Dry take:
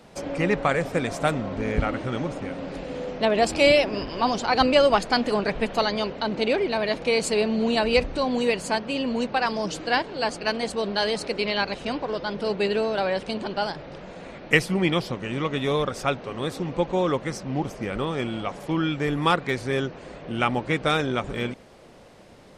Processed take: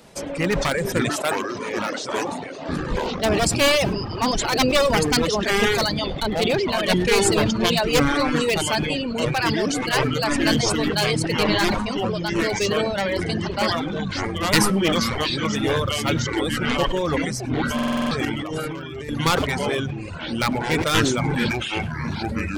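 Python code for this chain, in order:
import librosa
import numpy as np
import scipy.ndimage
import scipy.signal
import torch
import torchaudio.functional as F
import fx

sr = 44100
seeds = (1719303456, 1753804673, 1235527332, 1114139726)

y = np.minimum(x, 2.0 * 10.0 ** (-17.5 / 20.0) - x)
y = fx.high_shelf(y, sr, hz=5400.0, db=10.0)
y = fx.notch(y, sr, hz=740.0, q=16.0)
y = fx.echo_pitch(y, sr, ms=393, semitones=-6, count=3, db_per_echo=-3.0)
y = y + 10.0 ** (-15.5 / 20.0) * np.pad(y, (int(104 * sr / 1000.0), 0))[:len(y)]
y = fx.dereverb_blind(y, sr, rt60_s=1.1)
y = fx.highpass(y, sr, hz=340.0, slope=12, at=(1.09, 2.69))
y = fx.over_compress(y, sr, threshold_db=-33.0, ratio=-1.0, at=(18.25, 19.09))
y = fx.buffer_glitch(y, sr, at_s=(17.74,), block=2048, repeats=7)
y = fx.sustainer(y, sr, db_per_s=37.0)
y = y * librosa.db_to_amplitude(1.0)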